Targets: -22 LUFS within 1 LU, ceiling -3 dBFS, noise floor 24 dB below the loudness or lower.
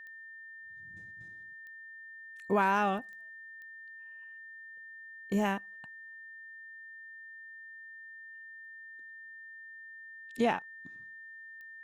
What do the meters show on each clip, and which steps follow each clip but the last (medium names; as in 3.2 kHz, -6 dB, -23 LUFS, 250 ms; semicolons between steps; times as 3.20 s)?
clicks found 6; steady tone 1.8 kHz; tone level -46 dBFS; loudness -38.0 LUFS; peak level -16.5 dBFS; loudness target -22.0 LUFS
-> de-click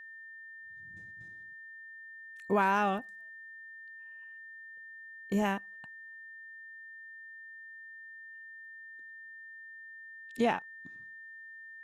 clicks found 0; steady tone 1.8 kHz; tone level -46 dBFS
-> band-stop 1.8 kHz, Q 30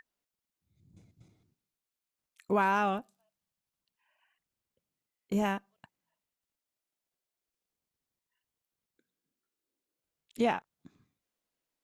steady tone not found; loudness -31.0 LUFS; peak level -17.0 dBFS; loudness target -22.0 LUFS
-> trim +9 dB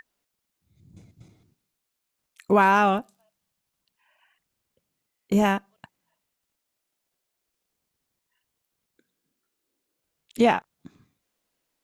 loudness -22.0 LUFS; peak level -8.0 dBFS; noise floor -81 dBFS